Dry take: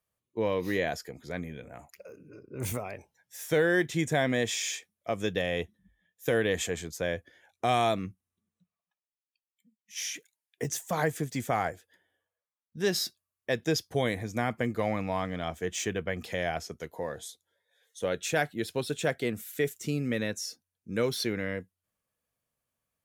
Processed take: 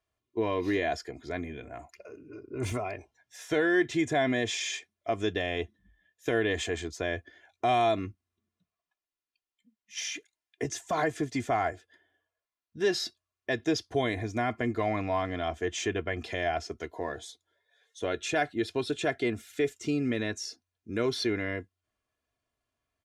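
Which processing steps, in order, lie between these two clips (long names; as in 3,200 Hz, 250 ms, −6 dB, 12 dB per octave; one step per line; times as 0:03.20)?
comb filter 2.9 ms, depth 67%
in parallel at +1 dB: brickwall limiter −23 dBFS, peak gain reduction 11.5 dB
on the sum: high-frequency loss of the air 82 metres
level −4.5 dB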